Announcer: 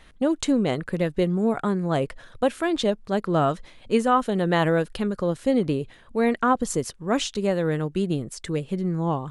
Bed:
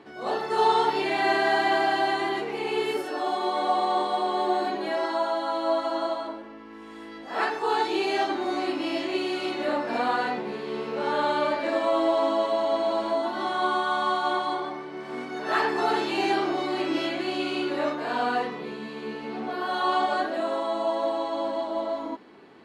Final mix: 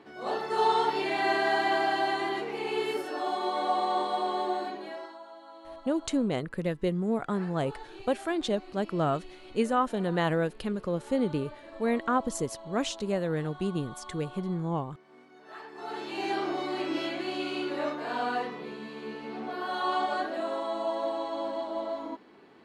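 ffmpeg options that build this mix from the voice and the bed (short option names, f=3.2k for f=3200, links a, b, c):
-filter_complex "[0:a]adelay=5650,volume=-6dB[a];[1:a]volume=13dB,afade=t=out:st=4.29:d=0.89:silence=0.133352,afade=t=in:st=15.71:d=0.78:silence=0.149624[b];[a][b]amix=inputs=2:normalize=0"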